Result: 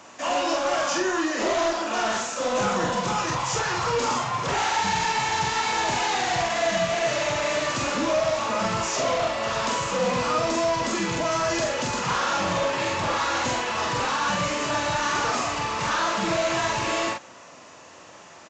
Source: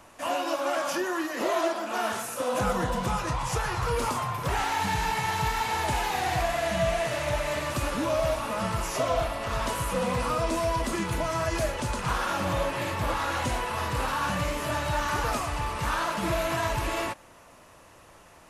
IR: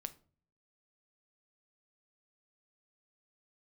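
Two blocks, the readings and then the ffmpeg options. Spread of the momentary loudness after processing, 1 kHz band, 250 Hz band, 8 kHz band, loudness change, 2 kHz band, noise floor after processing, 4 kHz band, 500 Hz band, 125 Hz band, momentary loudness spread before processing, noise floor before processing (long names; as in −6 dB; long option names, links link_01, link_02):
2 LU, +4.0 dB, +3.0 dB, +6.5 dB, +4.0 dB, +4.5 dB, −47 dBFS, +6.5 dB, +3.5 dB, −2.5 dB, 3 LU, −53 dBFS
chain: -filter_complex "[0:a]highpass=160,highshelf=frequency=5500:gain=9,asoftclip=type=tanh:threshold=-25dB,asplit=2[link_01][link_02];[link_02]adelay=45,volume=-3dB[link_03];[link_01][link_03]amix=inputs=2:normalize=0,aresample=16000,aresample=44100,volume=4.5dB"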